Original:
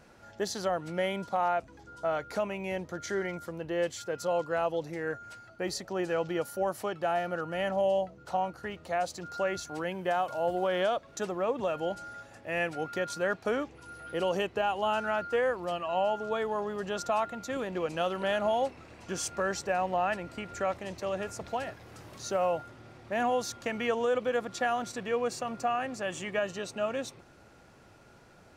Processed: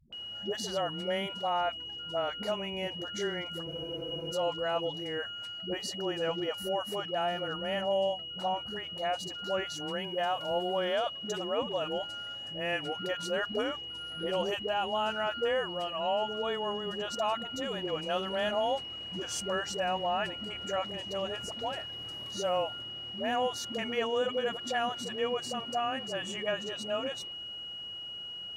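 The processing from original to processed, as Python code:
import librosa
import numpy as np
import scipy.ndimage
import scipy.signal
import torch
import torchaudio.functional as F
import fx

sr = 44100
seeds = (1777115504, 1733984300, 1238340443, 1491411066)

y = x + 10.0 ** (-37.0 / 20.0) * np.sin(2.0 * np.pi * 2900.0 * np.arange(len(x)) / sr)
y = fx.dispersion(y, sr, late='highs', ms=127.0, hz=310.0)
y = fx.spec_freeze(y, sr, seeds[0], at_s=3.69, hold_s=0.62)
y = F.gain(torch.from_numpy(y), -2.0).numpy()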